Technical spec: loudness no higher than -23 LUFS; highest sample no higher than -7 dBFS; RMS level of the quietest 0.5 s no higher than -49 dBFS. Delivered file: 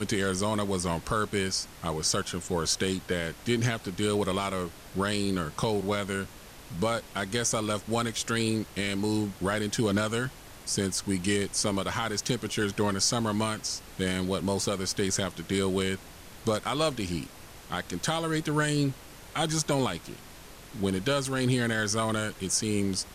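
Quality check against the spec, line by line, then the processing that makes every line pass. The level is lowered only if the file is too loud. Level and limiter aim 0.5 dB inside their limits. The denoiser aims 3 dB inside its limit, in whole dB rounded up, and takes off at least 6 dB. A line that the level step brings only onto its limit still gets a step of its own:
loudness -29.0 LUFS: OK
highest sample -14.5 dBFS: OK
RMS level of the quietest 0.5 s -47 dBFS: fail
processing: denoiser 6 dB, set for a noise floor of -47 dBFS

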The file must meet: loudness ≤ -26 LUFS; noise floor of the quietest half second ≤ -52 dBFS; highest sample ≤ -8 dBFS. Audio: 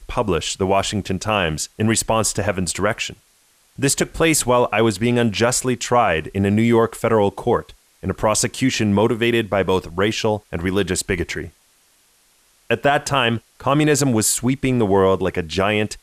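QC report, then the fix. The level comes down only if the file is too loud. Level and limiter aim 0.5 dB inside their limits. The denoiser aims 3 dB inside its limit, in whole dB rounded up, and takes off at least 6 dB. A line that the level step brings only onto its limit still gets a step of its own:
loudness -19.0 LUFS: fail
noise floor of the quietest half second -58 dBFS: OK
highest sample -6.0 dBFS: fail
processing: gain -7.5 dB

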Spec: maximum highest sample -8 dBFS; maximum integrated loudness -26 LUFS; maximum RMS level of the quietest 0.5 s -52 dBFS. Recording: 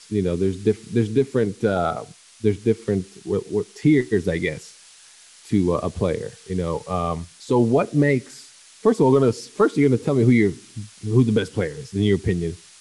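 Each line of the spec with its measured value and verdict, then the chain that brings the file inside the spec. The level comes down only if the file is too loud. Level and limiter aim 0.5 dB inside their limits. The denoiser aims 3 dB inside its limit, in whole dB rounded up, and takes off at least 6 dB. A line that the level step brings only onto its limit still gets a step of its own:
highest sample -6.5 dBFS: fail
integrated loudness -21.5 LUFS: fail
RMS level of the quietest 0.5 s -49 dBFS: fail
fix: gain -5 dB

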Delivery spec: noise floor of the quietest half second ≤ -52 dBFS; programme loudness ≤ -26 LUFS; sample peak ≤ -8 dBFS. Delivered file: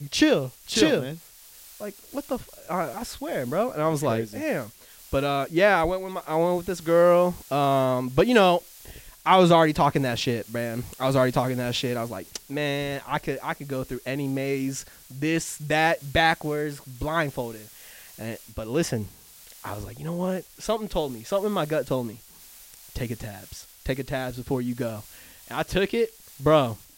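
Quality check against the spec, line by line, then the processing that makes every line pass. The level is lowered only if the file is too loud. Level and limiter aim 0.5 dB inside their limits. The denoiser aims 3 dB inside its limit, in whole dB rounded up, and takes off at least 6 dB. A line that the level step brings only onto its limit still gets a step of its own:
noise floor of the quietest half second -49 dBFS: fail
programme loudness -25.0 LUFS: fail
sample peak -6.0 dBFS: fail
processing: denoiser 6 dB, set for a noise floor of -49 dBFS; gain -1.5 dB; limiter -8.5 dBFS

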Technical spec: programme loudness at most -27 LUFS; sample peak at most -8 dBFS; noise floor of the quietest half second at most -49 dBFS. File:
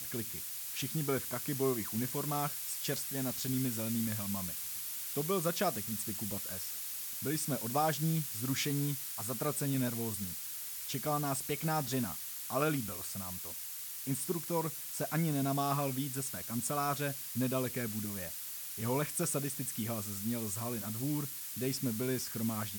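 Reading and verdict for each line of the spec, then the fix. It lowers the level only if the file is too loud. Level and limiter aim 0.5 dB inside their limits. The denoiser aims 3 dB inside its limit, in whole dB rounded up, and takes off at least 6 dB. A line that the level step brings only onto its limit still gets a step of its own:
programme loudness -35.0 LUFS: OK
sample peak -19.5 dBFS: OK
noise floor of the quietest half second -43 dBFS: fail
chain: denoiser 9 dB, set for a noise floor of -43 dBFS

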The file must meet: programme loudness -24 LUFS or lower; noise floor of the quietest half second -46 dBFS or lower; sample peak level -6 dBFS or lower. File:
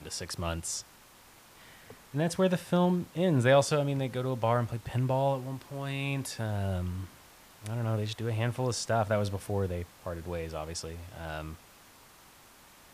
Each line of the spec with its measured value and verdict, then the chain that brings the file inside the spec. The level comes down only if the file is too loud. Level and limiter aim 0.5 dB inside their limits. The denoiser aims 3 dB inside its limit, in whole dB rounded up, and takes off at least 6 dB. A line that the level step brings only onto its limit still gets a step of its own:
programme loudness -31.0 LUFS: OK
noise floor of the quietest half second -56 dBFS: OK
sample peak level -12.0 dBFS: OK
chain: none

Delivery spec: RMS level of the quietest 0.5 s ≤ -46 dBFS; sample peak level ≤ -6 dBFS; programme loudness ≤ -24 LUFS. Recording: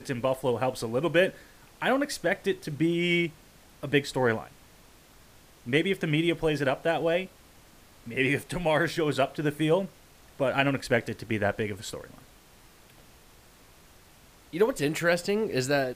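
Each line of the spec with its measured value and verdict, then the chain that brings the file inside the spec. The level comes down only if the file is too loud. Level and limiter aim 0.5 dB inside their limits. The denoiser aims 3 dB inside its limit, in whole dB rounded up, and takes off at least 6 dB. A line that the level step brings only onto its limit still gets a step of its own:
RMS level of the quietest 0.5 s -55 dBFS: OK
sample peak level -7.5 dBFS: OK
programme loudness -27.5 LUFS: OK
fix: none

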